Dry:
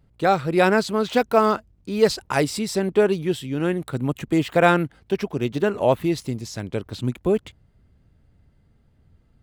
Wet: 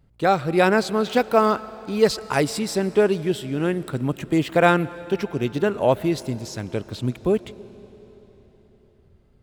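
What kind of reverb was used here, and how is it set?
algorithmic reverb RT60 4.2 s, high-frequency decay 0.95×, pre-delay 75 ms, DRR 17.5 dB

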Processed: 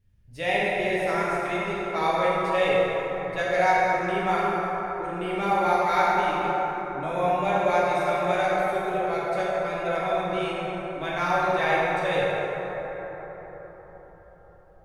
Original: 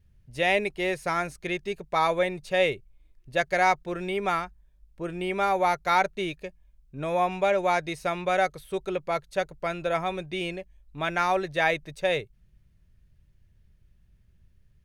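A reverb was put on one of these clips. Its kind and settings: plate-style reverb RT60 4.9 s, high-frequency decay 0.35×, DRR -8 dB; trim -6.5 dB

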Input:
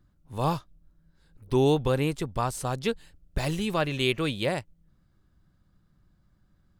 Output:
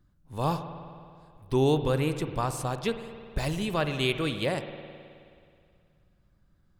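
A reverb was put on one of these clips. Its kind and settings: spring tank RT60 2.3 s, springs 53 ms, chirp 70 ms, DRR 9 dB; trim -1.5 dB

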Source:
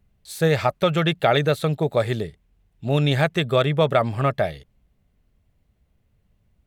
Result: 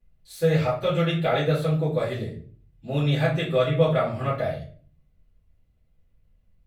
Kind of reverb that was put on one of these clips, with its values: simulated room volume 35 m³, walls mixed, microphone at 2 m; trim -16 dB

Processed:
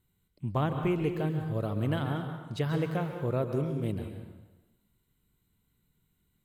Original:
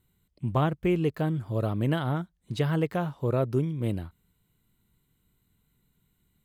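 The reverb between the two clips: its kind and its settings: plate-style reverb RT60 1.1 s, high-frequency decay 0.9×, pre-delay 120 ms, DRR 5.5 dB; trim -4 dB

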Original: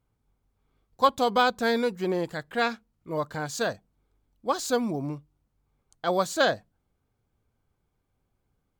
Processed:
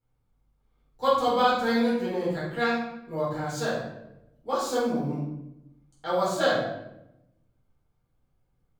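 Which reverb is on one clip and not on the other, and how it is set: simulated room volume 280 m³, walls mixed, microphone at 4.3 m; trim -12.5 dB

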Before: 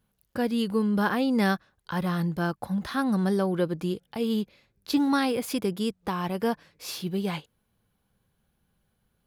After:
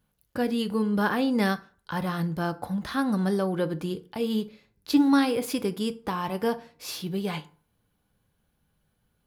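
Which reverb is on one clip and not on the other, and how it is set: FDN reverb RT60 0.43 s, low-frequency decay 1×, high-frequency decay 0.65×, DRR 10 dB

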